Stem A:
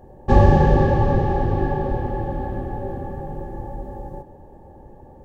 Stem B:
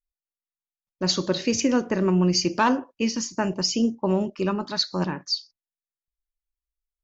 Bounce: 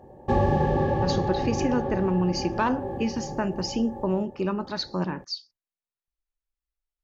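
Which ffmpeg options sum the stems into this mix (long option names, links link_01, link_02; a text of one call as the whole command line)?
ffmpeg -i stem1.wav -i stem2.wav -filter_complex "[0:a]highpass=frequency=130:poles=1,bandreject=frequency=1500:width=7.1,volume=-1dB[link_01];[1:a]highshelf=frequency=4200:gain=-8.5,volume=0dB[link_02];[link_01][link_02]amix=inputs=2:normalize=0,highshelf=frequency=6700:gain=-6.5,acompressor=threshold=-26dB:ratio=1.5" out.wav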